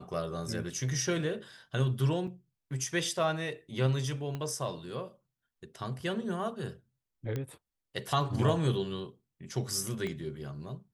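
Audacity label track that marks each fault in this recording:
2.270000	2.280000	drop-out 5.8 ms
4.350000	4.350000	click −24 dBFS
7.360000	7.360000	click −22 dBFS
10.070000	10.070000	click −24 dBFS

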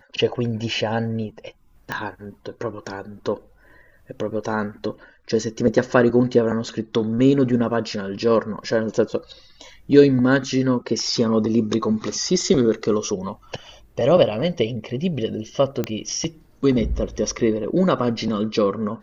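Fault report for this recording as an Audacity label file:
1.920000	1.920000	click −12 dBFS
15.840000	15.840000	click −10 dBFS

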